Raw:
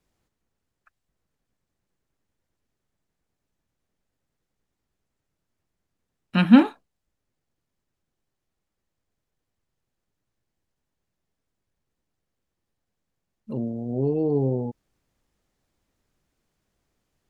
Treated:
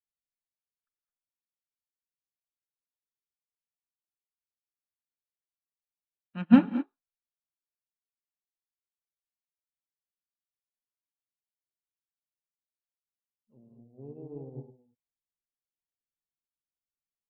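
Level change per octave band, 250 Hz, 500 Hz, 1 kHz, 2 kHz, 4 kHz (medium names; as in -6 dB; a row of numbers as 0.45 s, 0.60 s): -5.5 dB, -15.5 dB, -9.0 dB, -10.0 dB, under -10 dB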